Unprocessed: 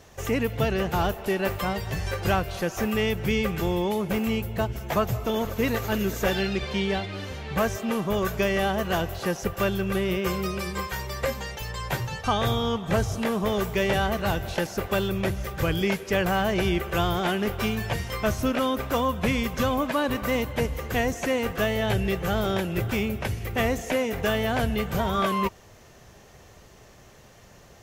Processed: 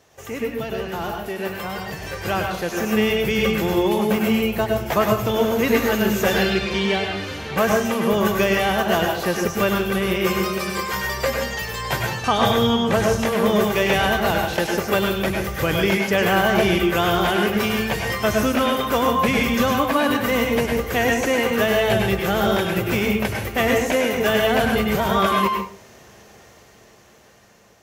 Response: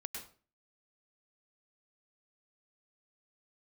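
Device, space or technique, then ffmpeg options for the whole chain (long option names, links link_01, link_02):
far laptop microphone: -filter_complex "[1:a]atrim=start_sample=2205[link_01];[0:a][link_01]afir=irnorm=-1:irlink=0,highpass=frequency=190:poles=1,dynaudnorm=framelen=710:gausssize=7:maxgain=9.5dB"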